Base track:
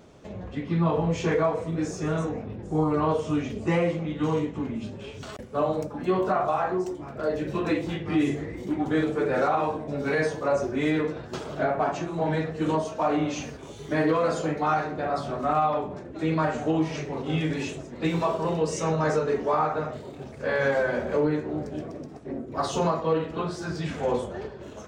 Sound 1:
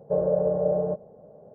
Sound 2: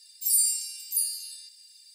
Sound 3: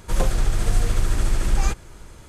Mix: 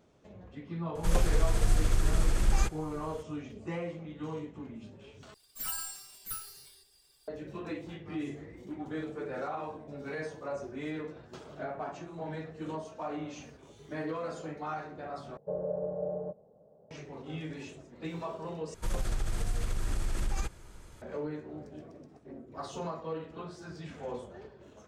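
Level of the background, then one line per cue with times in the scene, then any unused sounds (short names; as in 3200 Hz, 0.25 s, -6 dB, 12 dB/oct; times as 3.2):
base track -13 dB
0.95 add 3 -6 dB
5.34 replace with 2 -10.5 dB + minimum comb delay 6.9 ms
15.37 replace with 1 -11 dB
18.74 replace with 3 -8.5 dB + compressor, threshold -17 dBFS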